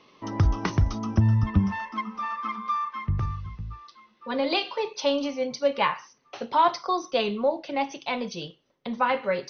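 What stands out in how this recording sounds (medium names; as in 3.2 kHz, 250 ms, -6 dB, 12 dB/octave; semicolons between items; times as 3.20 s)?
AC-3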